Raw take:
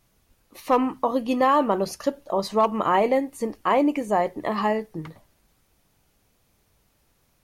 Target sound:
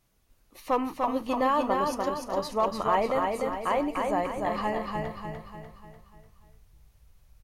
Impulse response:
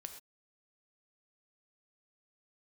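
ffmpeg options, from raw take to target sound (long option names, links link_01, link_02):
-filter_complex "[0:a]asplit=2[link_01][link_02];[link_02]aecho=0:1:296|592|888|1184|1480|1776:0.668|0.321|0.154|0.0739|0.0355|0.017[link_03];[link_01][link_03]amix=inputs=2:normalize=0,asubboost=boost=11.5:cutoff=78,asplit=2[link_04][link_05];[link_05]aecho=0:1:340:0.0944[link_06];[link_04][link_06]amix=inputs=2:normalize=0,volume=-5.5dB"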